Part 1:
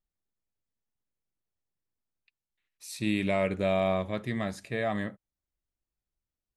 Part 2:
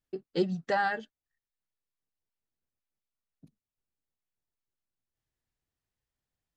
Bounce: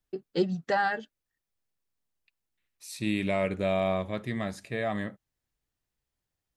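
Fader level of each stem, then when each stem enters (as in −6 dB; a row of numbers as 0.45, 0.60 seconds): −0.5, +1.5 decibels; 0.00, 0.00 seconds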